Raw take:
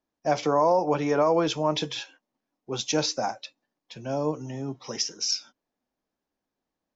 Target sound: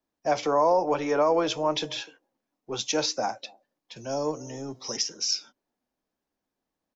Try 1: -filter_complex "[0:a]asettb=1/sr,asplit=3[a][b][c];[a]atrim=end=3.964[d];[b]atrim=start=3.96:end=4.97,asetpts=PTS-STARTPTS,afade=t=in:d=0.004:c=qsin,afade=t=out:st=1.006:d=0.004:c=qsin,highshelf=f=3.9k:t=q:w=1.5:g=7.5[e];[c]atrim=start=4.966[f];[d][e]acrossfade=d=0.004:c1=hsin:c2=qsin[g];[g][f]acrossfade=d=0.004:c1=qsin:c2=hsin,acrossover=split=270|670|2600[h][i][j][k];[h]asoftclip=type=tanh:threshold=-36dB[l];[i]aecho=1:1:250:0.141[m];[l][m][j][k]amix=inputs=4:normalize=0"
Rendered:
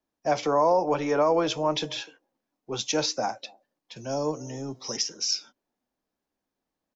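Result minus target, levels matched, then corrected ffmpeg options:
soft clip: distortion -5 dB
-filter_complex "[0:a]asettb=1/sr,asplit=3[a][b][c];[a]atrim=end=3.964[d];[b]atrim=start=3.96:end=4.97,asetpts=PTS-STARTPTS,afade=t=in:d=0.004:c=qsin,afade=t=out:st=1.006:d=0.004:c=qsin,highshelf=f=3.9k:t=q:w=1.5:g=7.5[e];[c]atrim=start=4.966[f];[d][e]acrossfade=d=0.004:c1=hsin:c2=qsin[g];[g][f]acrossfade=d=0.004:c1=qsin:c2=hsin,acrossover=split=270|670|2600[h][i][j][k];[h]asoftclip=type=tanh:threshold=-42.5dB[l];[i]aecho=1:1:250:0.141[m];[l][m][j][k]amix=inputs=4:normalize=0"

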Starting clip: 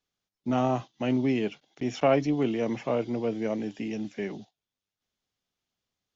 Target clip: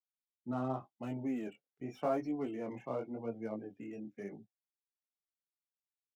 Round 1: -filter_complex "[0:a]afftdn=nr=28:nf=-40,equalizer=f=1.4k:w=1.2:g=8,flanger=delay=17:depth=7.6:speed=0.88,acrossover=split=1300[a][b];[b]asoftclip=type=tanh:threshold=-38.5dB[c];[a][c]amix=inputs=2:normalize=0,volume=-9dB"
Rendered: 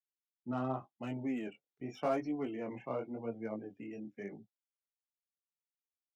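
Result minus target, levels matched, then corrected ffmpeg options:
soft clip: distortion -5 dB
-filter_complex "[0:a]afftdn=nr=28:nf=-40,equalizer=f=1.4k:w=1.2:g=8,flanger=delay=17:depth=7.6:speed=0.88,acrossover=split=1300[a][b];[b]asoftclip=type=tanh:threshold=-48.5dB[c];[a][c]amix=inputs=2:normalize=0,volume=-9dB"

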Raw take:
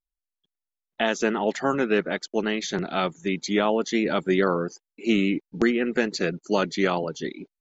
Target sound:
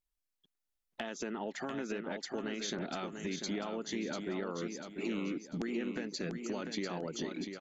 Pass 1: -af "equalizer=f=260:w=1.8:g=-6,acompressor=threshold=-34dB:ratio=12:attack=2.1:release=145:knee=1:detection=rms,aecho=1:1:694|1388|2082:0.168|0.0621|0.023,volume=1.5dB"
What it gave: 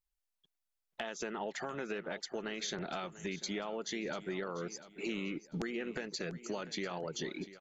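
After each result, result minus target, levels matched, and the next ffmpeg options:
echo-to-direct -9 dB; 250 Hz band -2.5 dB
-af "equalizer=f=260:w=1.8:g=-6,acompressor=threshold=-34dB:ratio=12:attack=2.1:release=145:knee=1:detection=rms,aecho=1:1:694|1388|2082|2776:0.473|0.175|0.0648|0.024,volume=1.5dB"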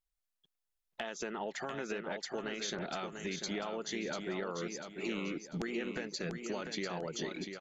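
250 Hz band -2.5 dB
-af "equalizer=f=260:w=1.8:g=3.5,acompressor=threshold=-34dB:ratio=12:attack=2.1:release=145:knee=1:detection=rms,aecho=1:1:694|1388|2082|2776:0.473|0.175|0.0648|0.024,volume=1.5dB"

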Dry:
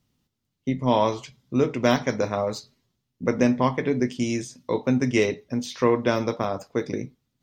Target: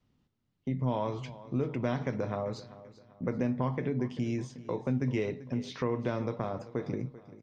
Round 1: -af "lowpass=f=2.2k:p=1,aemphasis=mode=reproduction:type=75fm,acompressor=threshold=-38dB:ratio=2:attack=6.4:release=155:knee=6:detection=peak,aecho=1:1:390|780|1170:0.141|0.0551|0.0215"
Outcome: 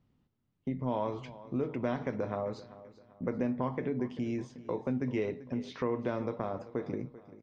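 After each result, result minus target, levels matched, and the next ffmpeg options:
8000 Hz band -5.5 dB; 125 Hz band -4.5 dB
-af "lowpass=f=7.8k:p=1,aemphasis=mode=reproduction:type=75fm,acompressor=threshold=-38dB:ratio=2:attack=6.4:release=155:knee=6:detection=peak,aecho=1:1:390|780|1170:0.141|0.0551|0.0215"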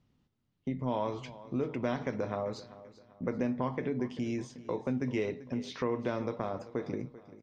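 125 Hz band -4.5 dB
-af "lowpass=f=7.8k:p=1,aemphasis=mode=reproduction:type=75fm,acompressor=threshold=-38dB:ratio=2:attack=6.4:release=155:knee=6:detection=peak,adynamicequalizer=threshold=0.00316:dfrequency=130:dqfactor=1.7:tfrequency=130:tqfactor=1.7:attack=5:release=100:ratio=0.417:range=3.5:mode=boostabove:tftype=bell,aecho=1:1:390|780|1170:0.141|0.0551|0.0215"

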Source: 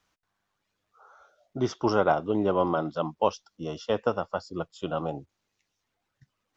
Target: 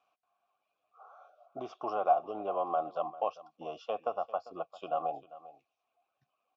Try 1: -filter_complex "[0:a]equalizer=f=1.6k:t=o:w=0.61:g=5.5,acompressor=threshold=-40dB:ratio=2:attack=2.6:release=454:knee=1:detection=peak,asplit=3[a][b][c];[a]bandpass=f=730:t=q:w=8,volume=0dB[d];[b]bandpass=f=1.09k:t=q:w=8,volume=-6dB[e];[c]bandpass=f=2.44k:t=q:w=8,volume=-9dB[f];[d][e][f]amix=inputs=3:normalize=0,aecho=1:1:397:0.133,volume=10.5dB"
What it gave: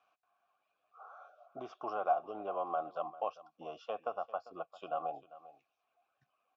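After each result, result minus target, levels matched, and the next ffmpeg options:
compressor: peak gain reduction +5 dB; 2000 Hz band +4.5 dB
-filter_complex "[0:a]equalizer=f=1.6k:t=o:w=0.61:g=5.5,acompressor=threshold=-31dB:ratio=2:attack=2.6:release=454:knee=1:detection=peak,asplit=3[a][b][c];[a]bandpass=f=730:t=q:w=8,volume=0dB[d];[b]bandpass=f=1.09k:t=q:w=8,volume=-6dB[e];[c]bandpass=f=2.44k:t=q:w=8,volume=-9dB[f];[d][e][f]amix=inputs=3:normalize=0,aecho=1:1:397:0.133,volume=10.5dB"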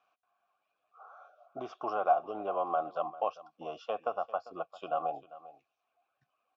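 2000 Hz band +4.5 dB
-filter_complex "[0:a]equalizer=f=1.6k:t=o:w=0.61:g=-2,acompressor=threshold=-31dB:ratio=2:attack=2.6:release=454:knee=1:detection=peak,asplit=3[a][b][c];[a]bandpass=f=730:t=q:w=8,volume=0dB[d];[b]bandpass=f=1.09k:t=q:w=8,volume=-6dB[e];[c]bandpass=f=2.44k:t=q:w=8,volume=-9dB[f];[d][e][f]amix=inputs=3:normalize=0,aecho=1:1:397:0.133,volume=10.5dB"

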